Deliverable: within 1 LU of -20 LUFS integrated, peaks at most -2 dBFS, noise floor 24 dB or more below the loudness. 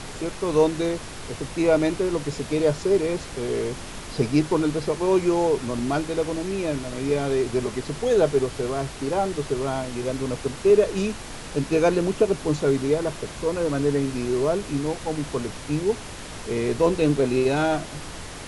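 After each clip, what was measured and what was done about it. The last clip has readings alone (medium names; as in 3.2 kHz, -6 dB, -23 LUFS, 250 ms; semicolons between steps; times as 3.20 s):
noise floor -37 dBFS; noise floor target -48 dBFS; loudness -24.0 LUFS; peak level -7.0 dBFS; loudness target -20.0 LUFS
-> noise print and reduce 11 dB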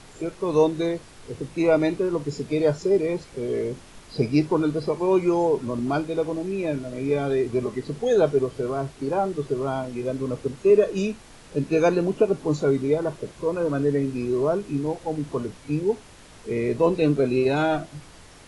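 noise floor -48 dBFS; noise floor target -49 dBFS
-> noise print and reduce 6 dB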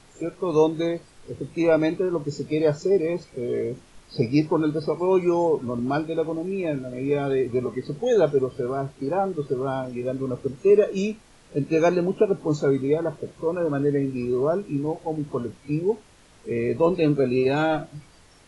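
noise floor -53 dBFS; loudness -24.5 LUFS; peak level -7.0 dBFS; loudness target -20.0 LUFS
-> trim +4.5 dB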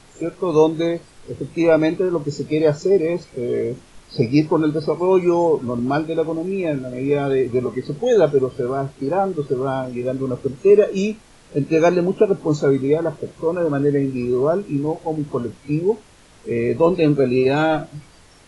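loudness -20.0 LUFS; peak level -2.5 dBFS; noise floor -49 dBFS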